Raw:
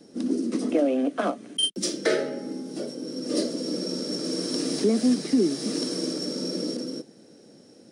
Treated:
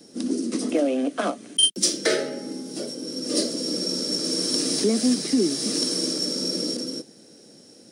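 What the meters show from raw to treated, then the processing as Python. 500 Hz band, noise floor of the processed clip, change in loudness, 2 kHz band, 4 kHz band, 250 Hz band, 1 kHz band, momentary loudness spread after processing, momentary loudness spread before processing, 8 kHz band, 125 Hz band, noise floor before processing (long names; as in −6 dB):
0.0 dB, −50 dBFS, +3.0 dB, +2.5 dB, +6.5 dB, 0.0 dB, +1.0 dB, 11 LU, 11 LU, +9.0 dB, 0.0 dB, −52 dBFS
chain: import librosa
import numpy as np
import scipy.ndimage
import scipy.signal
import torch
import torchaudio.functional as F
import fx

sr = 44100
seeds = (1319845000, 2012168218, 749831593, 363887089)

y = fx.high_shelf(x, sr, hz=3300.0, db=10.5)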